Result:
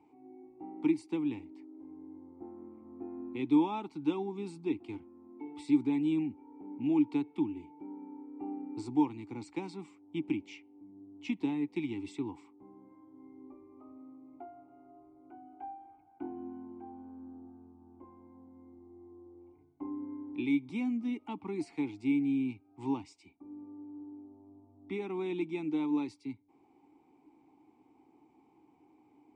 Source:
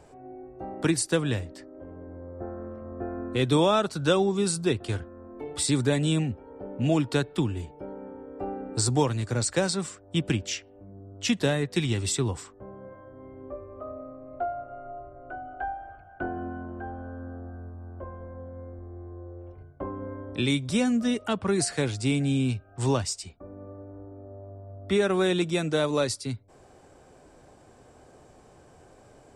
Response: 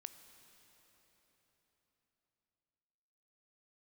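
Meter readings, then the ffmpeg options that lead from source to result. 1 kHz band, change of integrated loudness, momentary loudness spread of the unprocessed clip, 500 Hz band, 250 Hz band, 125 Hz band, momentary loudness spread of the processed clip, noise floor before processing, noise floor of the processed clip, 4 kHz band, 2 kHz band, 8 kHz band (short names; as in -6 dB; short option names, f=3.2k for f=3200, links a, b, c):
-10.0 dB, -7.5 dB, 20 LU, -13.5 dB, -3.5 dB, -19.0 dB, 22 LU, -54 dBFS, -65 dBFS, -21.0 dB, -14.0 dB, under -30 dB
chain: -filter_complex "[0:a]asplit=3[a][b][c];[a]bandpass=f=300:t=q:w=8,volume=0dB[d];[b]bandpass=f=870:t=q:w=8,volume=-6dB[e];[c]bandpass=f=2.24k:t=q:w=8,volume=-9dB[f];[d][e][f]amix=inputs=3:normalize=0,volume=2dB"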